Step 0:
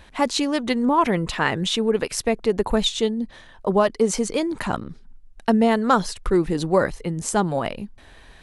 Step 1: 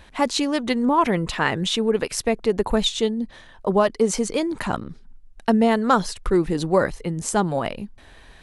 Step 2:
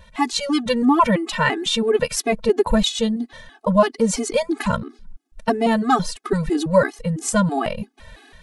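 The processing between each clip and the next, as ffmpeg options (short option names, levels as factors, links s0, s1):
-af anull
-af "dynaudnorm=f=140:g=5:m=1.88,afftfilt=real='re*gt(sin(2*PI*3*pts/sr)*(1-2*mod(floor(b*sr/1024/220),2)),0)':imag='im*gt(sin(2*PI*3*pts/sr)*(1-2*mod(floor(b*sr/1024/220),2)),0)':win_size=1024:overlap=0.75,volume=1.26"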